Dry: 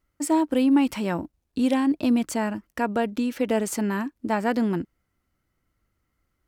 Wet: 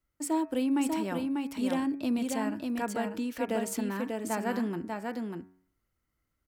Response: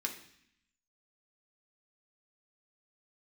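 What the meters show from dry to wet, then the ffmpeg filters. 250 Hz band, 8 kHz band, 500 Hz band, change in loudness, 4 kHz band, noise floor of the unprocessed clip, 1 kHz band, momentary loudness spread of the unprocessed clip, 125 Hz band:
−7.0 dB, −4.0 dB, −6.5 dB, −7.0 dB, −5.5 dB, −77 dBFS, −6.0 dB, 9 LU, −7.5 dB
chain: -filter_complex "[0:a]highshelf=frequency=8900:gain=5,bandreject=frequency=92.51:width_type=h:width=4,bandreject=frequency=185.02:width_type=h:width=4,bandreject=frequency=277.53:width_type=h:width=4,bandreject=frequency=370.04:width_type=h:width=4,bandreject=frequency=462.55:width_type=h:width=4,bandreject=frequency=555.06:width_type=h:width=4,bandreject=frequency=647.57:width_type=h:width=4,bandreject=frequency=740.08:width_type=h:width=4,bandreject=frequency=832.59:width_type=h:width=4,bandreject=frequency=925.1:width_type=h:width=4,bandreject=frequency=1017.61:width_type=h:width=4,bandreject=frequency=1110.12:width_type=h:width=4,bandreject=frequency=1202.63:width_type=h:width=4,bandreject=frequency=1295.14:width_type=h:width=4,bandreject=frequency=1387.65:width_type=h:width=4,bandreject=frequency=1480.16:width_type=h:width=4,bandreject=frequency=1572.67:width_type=h:width=4,bandreject=frequency=1665.18:width_type=h:width=4,bandreject=frequency=1757.69:width_type=h:width=4,bandreject=frequency=1850.2:width_type=h:width=4,bandreject=frequency=1942.71:width_type=h:width=4,bandreject=frequency=2035.22:width_type=h:width=4,bandreject=frequency=2127.73:width_type=h:width=4,bandreject=frequency=2220.24:width_type=h:width=4,bandreject=frequency=2312.75:width_type=h:width=4,bandreject=frequency=2405.26:width_type=h:width=4,bandreject=frequency=2497.77:width_type=h:width=4,bandreject=frequency=2590.28:width_type=h:width=4,acrossover=split=150|1200[link_01][link_02][link_03];[link_01]alimiter=level_in=17dB:limit=-24dB:level=0:latency=1,volume=-17dB[link_04];[link_04][link_02][link_03]amix=inputs=3:normalize=0,aecho=1:1:593:0.631,volume=-7.5dB"

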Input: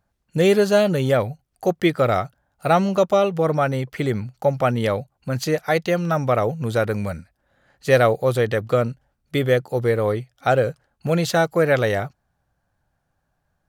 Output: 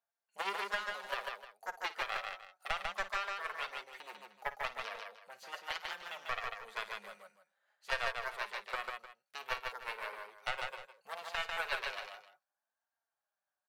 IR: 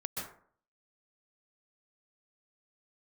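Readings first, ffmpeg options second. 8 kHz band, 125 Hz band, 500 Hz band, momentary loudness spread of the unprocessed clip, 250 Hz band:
−17.5 dB, below −40 dB, −28.5 dB, 10 LU, below −40 dB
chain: -filter_complex "[0:a]acrossover=split=3000[link_01][link_02];[link_02]acompressor=threshold=-40dB:ratio=4:attack=1:release=60[link_03];[link_01][link_03]amix=inputs=2:normalize=0,highpass=51,aeval=exprs='0.668*(cos(1*acos(clip(val(0)/0.668,-1,1)))-cos(1*PI/2))+0.237*(cos(3*acos(clip(val(0)/0.668,-1,1)))-cos(3*PI/2))+0.0119*(cos(7*acos(clip(val(0)/0.668,-1,1)))-cos(7*PI/2))':channel_layout=same,equalizer=frequency=200:width=5:gain=10.5,acompressor=threshold=-25dB:ratio=6,acrossover=split=510[link_04][link_05];[link_04]acrusher=bits=2:mix=0:aa=0.5[link_06];[link_06][link_05]amix=inputs=2:normalize=0,asoftclip=type=tanh:threshold=-19dB,flanger=delay=4.3:depth=1.2:regen=49:speed=0.62:shape=sinusoidal,asubboost=boost=11:cutoff=77,aecho=1:1:54|146|305:0.178|0.668|0.178,volume=2dB"

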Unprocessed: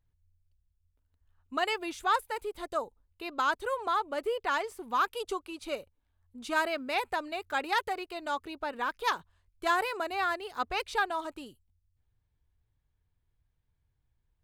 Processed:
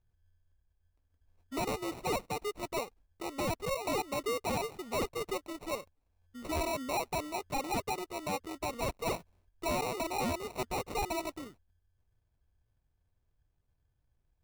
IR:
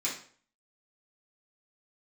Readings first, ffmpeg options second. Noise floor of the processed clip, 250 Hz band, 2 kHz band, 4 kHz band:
−77 dBFS, +2.5 dB, −9.0 dB, −3.5 dB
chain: -af "acrusher=samples=27:mix=1:aa=0.000001,volume=29.5dB,asoftclip=hard,volume=-29.5dB"

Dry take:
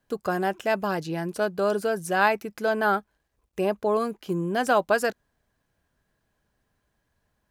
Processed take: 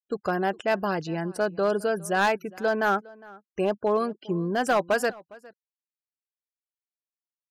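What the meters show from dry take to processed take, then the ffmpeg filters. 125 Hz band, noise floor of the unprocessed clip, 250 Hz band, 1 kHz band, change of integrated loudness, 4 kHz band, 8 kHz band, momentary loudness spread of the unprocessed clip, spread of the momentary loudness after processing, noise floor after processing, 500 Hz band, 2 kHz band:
0.0 dB, −76 dBFS, 0.0 dB, −1.0 dB, −0.5 dB, 0.0 dB, −0.5 dB, 7 LU, 6 LU, below −85 dBFS, −0.5 dB, −1.0 dB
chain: -filter_complex "[0:a]afftfilt=real='re*gte(hypot(re,im),0.00708)':imag='im*gte(hypot(re,im),0.00708)':win_size=1024:overlap=0.75,asoftclip=type=hard:threshold=-16dB,asplit=2[link_01][link_02];[link_02]adelay=408.2,volume=-22dB,highshelf=frequency=4000:gain=-9.18[link_03];[link_01][link_03]amix=inputs=2:normalize=0"

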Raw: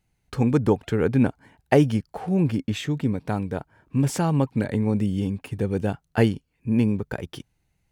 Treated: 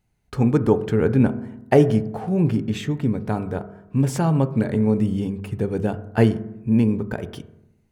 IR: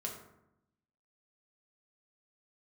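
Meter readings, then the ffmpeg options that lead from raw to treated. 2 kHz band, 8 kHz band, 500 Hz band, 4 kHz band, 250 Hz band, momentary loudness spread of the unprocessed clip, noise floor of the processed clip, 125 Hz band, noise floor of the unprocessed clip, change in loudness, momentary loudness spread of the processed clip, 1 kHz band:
0.0 dB, −1.0 dB, +3.5 dB, −1.5 dB, +2.5 dB, 11 LU, −63 dBFS, +2.5 dB, −73 dBFS, +2.5 dB, 12 LU, +1.5 dB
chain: -filter_complex "[0:a]asplit=2[link_01][link_02];[1:a]atrim=start_sample=2205,lowpass=2000[link_03];[link_02][link_03]afir=irnorm=-1:irlink=0,volume=-5dB[link_04];[link_01][link_04]amix=inputs=2:normalize=0,volume=-1dB"

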